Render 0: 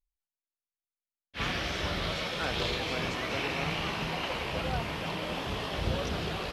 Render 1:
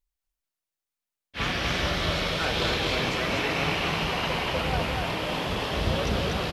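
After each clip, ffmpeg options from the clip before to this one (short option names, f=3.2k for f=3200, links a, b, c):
-af "aecho=1:1:244:0.708,volume=4dB"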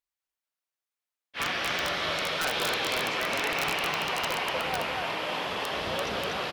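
-af "highpass=f=940:p=1,highshelf=f=2.7k:g=-8,aeval=exprs='(mod(13.3*val(0)+1,2)-1)/13.3':c=same,volume=3.5dB"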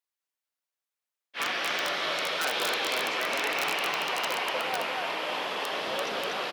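-af "highpass=270"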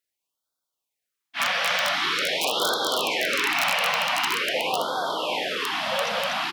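-af "afftfilt=real='re*(1-between(b*sr/1024,320*pow(2300/320,0.5+0.5*sin(2*PI*0.45*pts/sr))/1.41,320*pow(2300/320,0.5+0.5*sin(2*PI*0.45*pts/sr))*1.41))':imag='im*(1-between(b*sr/1024,320*pow(2300/320,0.5+0.5*sin(2*PI*0.45*pts/sr))/1.41,320*pow(2300/320,0.5+0.5*sin(2*PI*0.45*pts/sr))*1.41))':win_size=1024:overlap=0.75,volume=6dB"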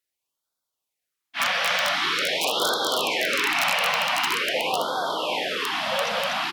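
-af "volume=1dB" -ar 48000 -c:a libmp3lame -b:a 112k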